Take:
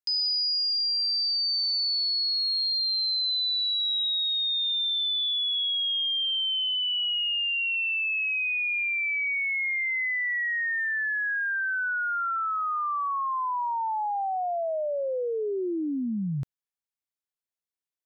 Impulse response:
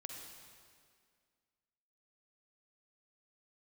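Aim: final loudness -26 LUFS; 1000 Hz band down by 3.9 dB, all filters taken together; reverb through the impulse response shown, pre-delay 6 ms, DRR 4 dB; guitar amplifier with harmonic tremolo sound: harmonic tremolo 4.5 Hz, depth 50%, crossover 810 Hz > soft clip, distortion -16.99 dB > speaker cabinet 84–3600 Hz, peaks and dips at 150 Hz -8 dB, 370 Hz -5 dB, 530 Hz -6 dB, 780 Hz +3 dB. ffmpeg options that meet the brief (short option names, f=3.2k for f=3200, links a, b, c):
-filter_complex "[0:a]equalizer=f=1k:t=o:g=-6,asplit=2[a][b];[1:a]atrim=start_sample=2205,adelay=6[c];[b][c]afir=irnorm=-1:irlink=0,volume=-1dB[d];[a][d]amix=inputs=2:normalize=0,acrossover=split=810[e][f];[e]aeval=exprs='val(0)*(1-0.5/2+0.5/2*cos(2*PI*4.5*n/s))':c=same[g];[f]aeval=exprs='val(0)*(1-0.5/2-0.5/2*cos(2*PI*4.5*n/s))':c=same[h];[g][h]amix=inputs=2:normalize=0,asoftclip=threshold=-24dB,highpass=84,equalizer=f=150:t=q:w=4:g=-8,equalizer=f=370:t=q:w=4:g=-5,equalizer=f=530:t=q:w=4:g=-6,equalizer=f=780:t=q:w=4:g=3,lowpass=f=3.6k:w=0.5412,lowpass=f=3.6k:w=1.3066,volume=5dB"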